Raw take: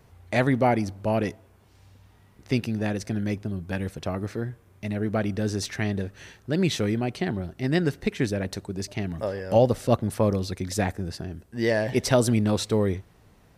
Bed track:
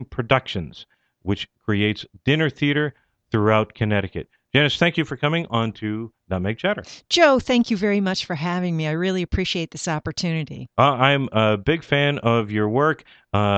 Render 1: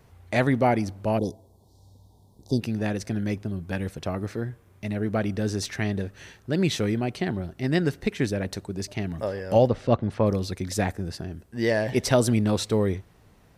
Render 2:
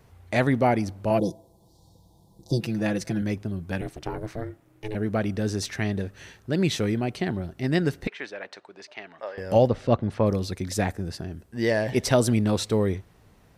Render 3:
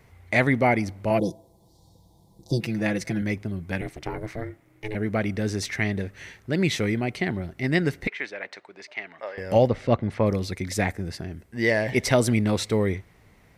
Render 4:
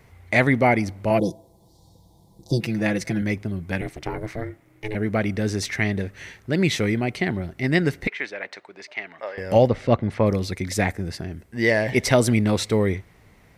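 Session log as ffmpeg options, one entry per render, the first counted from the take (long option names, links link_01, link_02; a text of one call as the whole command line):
ffmpeg -i in.wav -filter_complex "[0:a]asplit=3[link_01][link_02][link_03];[link_01]afade=type=out:start_time=1.17:duration=0.02[link_04];[link_02]asuperstop=centerf=1900:order=12:qfactor=0.72,afade=type=in:start_time=1.17:duration=0.02,afade=type=out:start_time=2.6:duration=0.02[link_05];[link_03]afade=type=in:start_time=2.6:duration=0.02[link_06];[link_04][link_05][link_06]amix=inputs=3:normalize=0,asplit=3[link_07][link_08][link_09];[link_07]afade=type=out:start_time=9.67:duration=0.02[link_10];[link_08]lowpass=3600,afade=type=in:start_time=9.67:duration=0.02,afade=type=out:start_time=10.25:duration=0.02[link_11];[link_09]afade=type=in:start_time=10.25:duration=0.02[link_12];[link_10][link_11][link_12]amix=inputs=3:normalize=0" out.wav
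ffmpeg -i in.wav -filter_complex "[0:a]asettb=1/sr,asplit=3[link_01][link_02][link_03];[link_01]atrim=end=1.104[link_04];[link_02]atrim=start=1.1:end=3.22,asetpts=PTS-STARTPTS,afade=type=in:duration=0.004:curve=qsin,afade=type=out:start_time=2.116:duration=0.004:curve=qsin,aecho=1:1:6:0.77,atrim=end_sample=93492[link_05];[link_03]atrim=start=3.216[link_06];[link_04][link_05]acrossfade=duration=0.004:curve1=hsin:curve2=qsin[link_07];[link_07][link_06]acrossfade=duration=0.004:curve1=qsin:curve2=hsin,asettb=1/sr,asplit=3[link_08][link_09][link_10];[link_08]atrim=end=3.814[link_11];[link_09]atrim=start=3.81:end=4.95,asetpts=PTS-STARTPTS,afade=type=in:duration=0.004:curve=qsin,afade=type=out:start_time=1.136:duration=0.004:curve=qsin,aeval=exprs='val(0)*sin(2*PI*220*n/s)':channel_layout=same[link_12];[link_10]atrim=start=4.946[link_13];[link_11][link_12]acrossfade=duration=0.004:curve1=hsin:curve2=qsin[link_14];[link_14][link_13]acrossfade=duration=0.004:curve1=qsin:curve2=hsin,asettb=1/sr,asplit=3[link_15][link_16][link_17];[link_15]atrim=end=8.074[link_18];[link_16]atrim=start=8.07:end=9.38,asetpts=PTS-STARTPTS,afade=type=in:duration=0.004:curve=qsin,afade=type=out:start_time=1.306:duration=0.004:curve=qsin,highpass=760,lowpass=3100[link_19];[link_17]atrim=start=9.376[link_20];[link_18][link_19]acrossfade=duration=0.004:curve1=hsin:curve2=qsin[link_21];[link_21][link_20]acrossfade=duration=0.004:curve1=qsin:curve2=hsin" out.wav
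ffmpeg -i in.wav -af "equalizer=frequency=2100:width_type=o:width=0.34:gain=10.5" out.wav
ffmpeg -i in.wav -af "volume=2.5dB" out.wav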